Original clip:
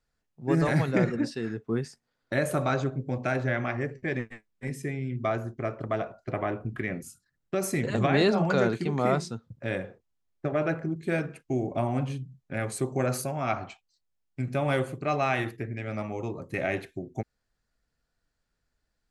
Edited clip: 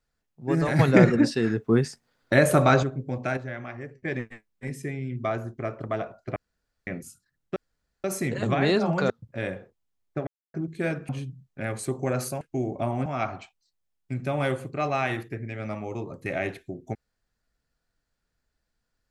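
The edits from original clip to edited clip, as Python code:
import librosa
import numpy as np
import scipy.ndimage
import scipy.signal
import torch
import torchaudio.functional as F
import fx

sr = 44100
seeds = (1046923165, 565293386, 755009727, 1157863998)

y = fx.edit(x, sr, fx.clip_gain(start_s=0.79, length_s=2.04, db=8.0),
    fx.clip_gain(start_s=3.37, length_s=0.68, db=-7.5),
    fx.room_tone_fill(start_s=6.36, length_s=0.51),
    fx.insert_room_tone(at_s=7.56, length_s=0.48),
    fx.cut(start_s=8.62, length_s=0.76),
    fx.silence(start_s=10.55, length_s=0.27),
    fx.move(start_s=11.37, length_s=0.65, to_s=13.34), tone=tone)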